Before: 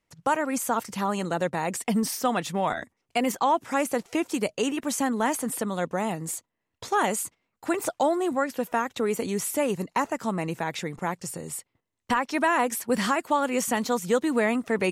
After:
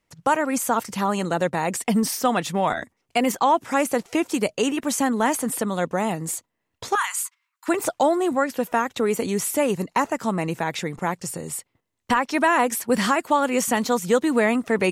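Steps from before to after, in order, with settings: 6.95–7.68 Chebyshev high-pass 1000 Hz, order 5; gain +4 dB

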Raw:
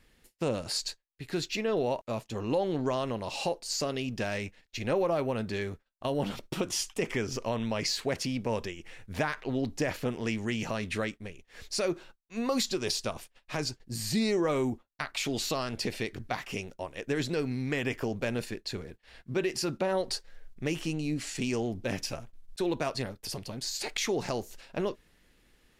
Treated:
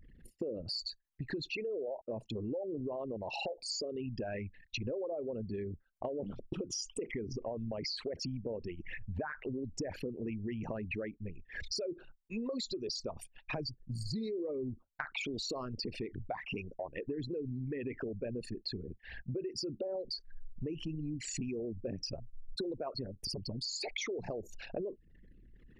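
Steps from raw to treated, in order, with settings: formant sharpening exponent 3; compressor 6:1, threshold -44 dBFS, peak gain reduction 18 dB; gain +7 dB

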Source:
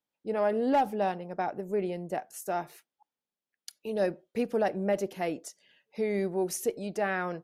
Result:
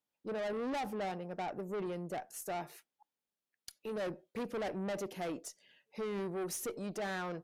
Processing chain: tube stage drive 33 dB, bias 0.2; gain -1.5 dB

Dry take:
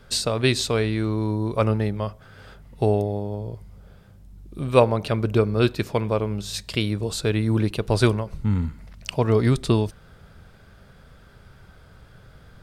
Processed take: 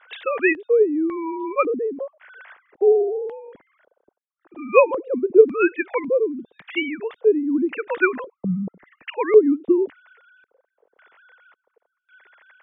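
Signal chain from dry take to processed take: sine-wave speech; high shelf 2300 Hz +11.5 dB; LFO low-pass square 0.91 Hz 460–1900 Hz; gain -2.5 dB

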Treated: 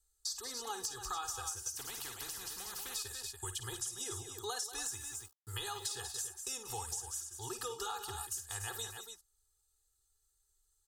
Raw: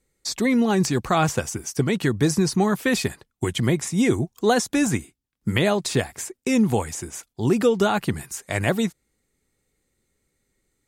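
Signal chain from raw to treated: passive tone stack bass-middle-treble 10-0-10; loudspeakers at several distances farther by 18 m -11 dB, 64 m -12 dB, 98 m -11 dB; 4.79–5.85 sample gate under -49.5 dBFS; fixed phaser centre 590 Hz, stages 6; comb 2.4 ms, depth 84%; compressor 4:1, threshold -35 dBFS, peak gain reduction 10 dB; 1.77–2.96 spectral compressor 4:1; gain -2.5 dB

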